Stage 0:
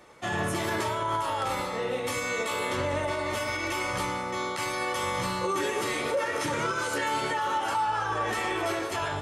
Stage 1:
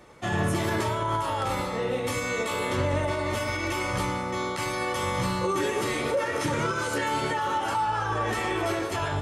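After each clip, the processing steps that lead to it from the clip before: low shelf 270 Hz +8.5 dB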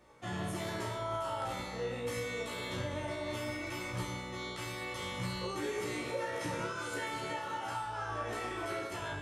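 resonator 60 Hz, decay 0.63 s, harmonics all, mix 90%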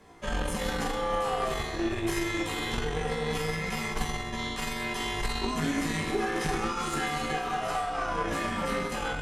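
frequency shift -140 Hz; added harmonics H 2 -13 dB, 6 -28 dB, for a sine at -24.5 dBFS; gain +7.5 dB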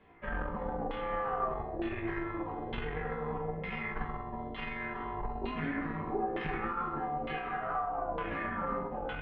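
LFO low-pass saw down 1.1 Hz 610–3100 Hz; air absorption 340 m; gain -6 dB

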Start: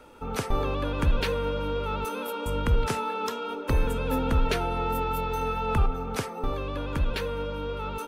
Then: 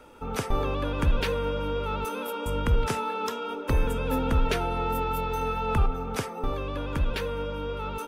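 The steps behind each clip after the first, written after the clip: notch 4200 Hz, Q 19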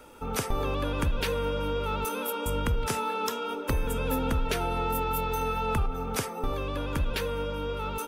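high shelf 6200 Hz +9.5 dB; compressor, threshold -23 dBFS, peak gain reduction 6 dB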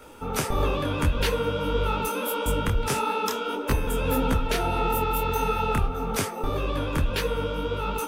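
detuned doubles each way 57 cents; gain +7.5 dB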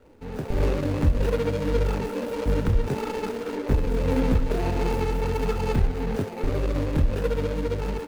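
median filter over 41 samples; AGC gain up to 7 dB; gain -3.5 dB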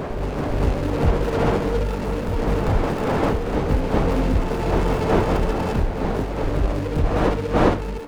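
self-modulated delay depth 0.23 ms; wind noise 610 Hz -26 dBFS; reverse echo 0.396 s -4 dB

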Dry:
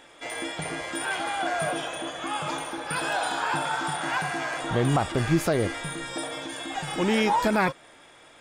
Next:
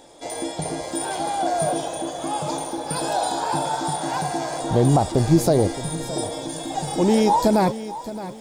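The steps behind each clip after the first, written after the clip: band shelf 1900 Hz -14 dB; lo-fi delay 0.618 s, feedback 35%, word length 9-bit, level -14 dB; gain +6.5 dB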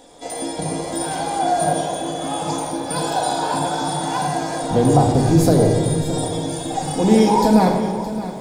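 shoebox room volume 2100 m³, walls mixed, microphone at 1.9 m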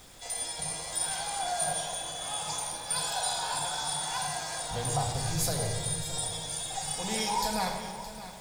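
passive tone stack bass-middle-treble 10-0-10; added noise pink -53 dBFS; gain -1.5 dB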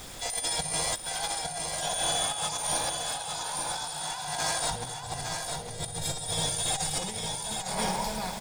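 negative-ratio compressor -37 dBFS, ratio -0.5; on a send: echo 0.857 s -5 dB; on the sum: gain +4.5 dB

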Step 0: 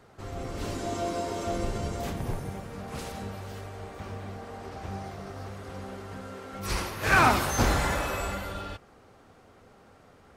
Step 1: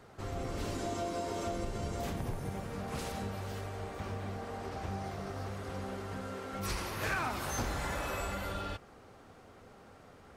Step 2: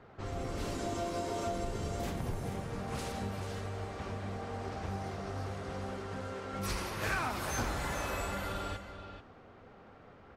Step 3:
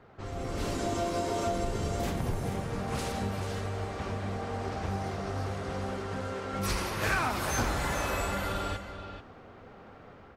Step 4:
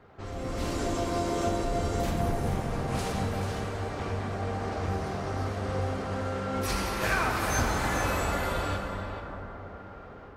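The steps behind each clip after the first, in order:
compressor 5:1, threshold -33 dBFS, peak gain reduction 15.5 dB
echo 0.436 s -9.5 dB; low-pass opened by the level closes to 2600 Hz, open at -32.5 dBFS
AGC gain up to 5 dB
plate-style reverb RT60 4.6 s, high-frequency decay 0.3×, DRR 1.5 dB

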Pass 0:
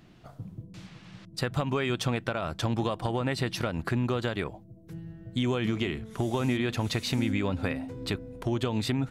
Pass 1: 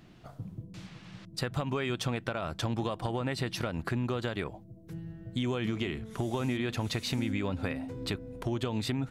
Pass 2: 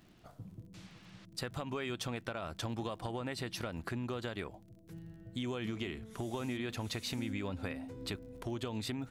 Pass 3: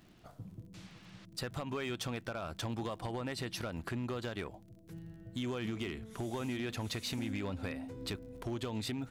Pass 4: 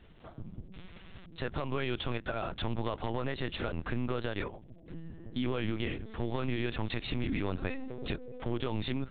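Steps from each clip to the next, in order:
compressor 1.5:1, threshold -34 dBFS, peak gain reduction 4.5 dB
high shelf 5800 Hz +4.5 dB; crackle 36/s -47 dBFS; bell 140 Hz -5.5 dB 0.34 oct; gain -6 dB
hard clip -32.5 dBFS, distortion -19 dB; gain +1 dB
LPC vocoder at 8 kHz pitch kept; gain +5 dB

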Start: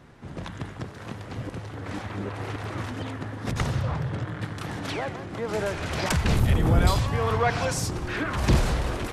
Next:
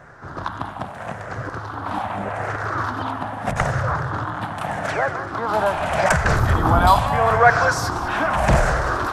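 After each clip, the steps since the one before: moving spectral ripple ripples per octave 0.53, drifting -0.81 Hz, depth 8 dB; band shelf 1000 Hz +12 dB; thinning echo 0.195 s, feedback 68%, level -15.5 dB; gain +1 dB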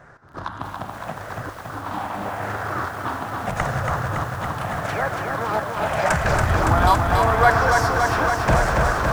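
step gate "xx..xxxxxxxxxxxx" 177 bpm -12 dB; lo-fi delay 0.281 s, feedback 80%, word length 7-bit, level -4 dB; gain -3 dB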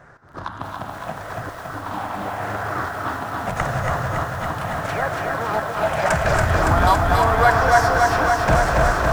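reverb RT60 0.45 s, pre-delay 0.223 s, DRR 5.5 dB

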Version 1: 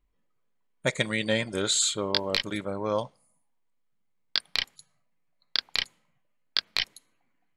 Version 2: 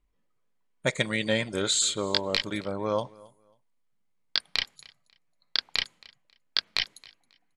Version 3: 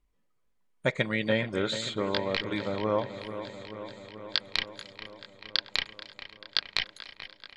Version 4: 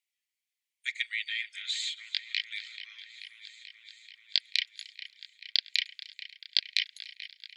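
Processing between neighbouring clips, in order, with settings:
LPF 11000 Hz 12 dB/oct; feedback echo 0.271 s, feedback 23%, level -23.5 dB
dark delay 0.435 s, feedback 71%, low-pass 2700 Hz, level -11.5 dB; treble ducked by the level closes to 2800 Hz, closed at -24.5 dBFS
steep high-pass 2000 Hz 48 dB/oct; gain +1.5 dB

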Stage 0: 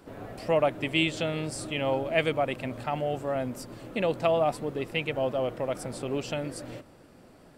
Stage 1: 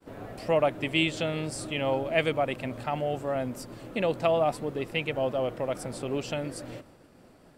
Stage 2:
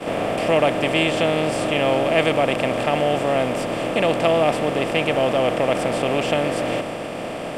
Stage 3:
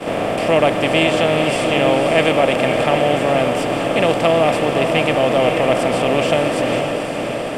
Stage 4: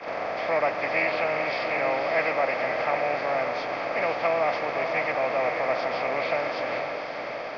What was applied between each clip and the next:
expander -51 dBFS
per-bin compression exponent 0.4; high shelf 5600 Hz -4.5 dB; gain +3 dB
diffused feedback echo 0.522 s, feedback 48%, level -6.5 dB; gain +3 dB
nonlinear frequency compression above 1500 Hz 1.5:1; three-band isolator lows -16 dB, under 590 Hz, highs -17 dB, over 6300 Hz; gain -5.5 dB

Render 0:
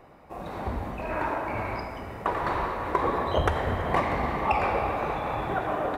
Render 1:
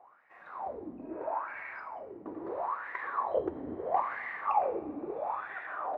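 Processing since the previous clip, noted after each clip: wah 0.76 Hz 280–1900 Hz, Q 7.3; gain +4 dB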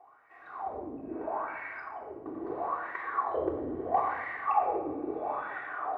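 shoebox room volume 3300 m³, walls furnished, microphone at 3.5 m; gain -2 dB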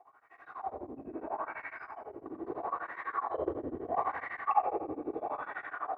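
beating tremolo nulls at 12 Hz

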